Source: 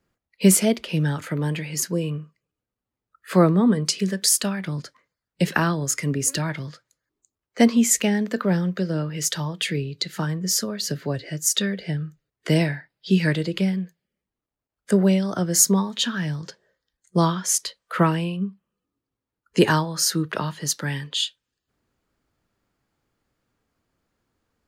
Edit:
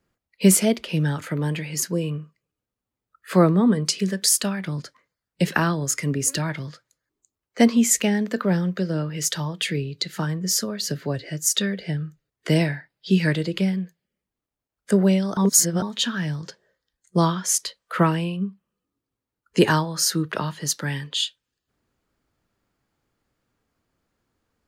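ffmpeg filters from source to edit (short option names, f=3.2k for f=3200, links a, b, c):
-filter_complex "[0:a]asplit=3[a][b][c];[a]atrim=end=15.372[d];[b]atrim=start=15.368:end=15.822,asetpts=PTS-STARTPTS,areverse[e];[c]atrim=start=15.818[f];[d][e]acrossfade=d=0.004:c1=hsin:c2=hsin[g];[g][f]acrossfade=d=0.004:c1=hsin:c2=hsin"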